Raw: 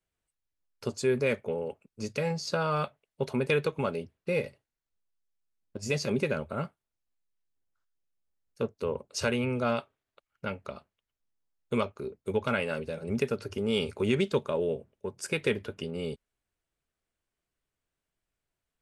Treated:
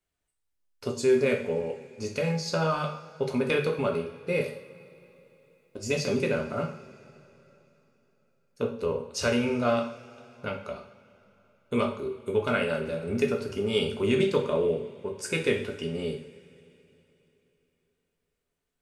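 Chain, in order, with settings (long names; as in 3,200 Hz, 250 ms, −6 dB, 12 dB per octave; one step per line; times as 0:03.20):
0:04.41–0:05.79: bass and treble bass −7 dB, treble +10 dB
coupled-rooms reverb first 0.55 s, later 3.6 s, from −20 dB, DRR 1.5 dB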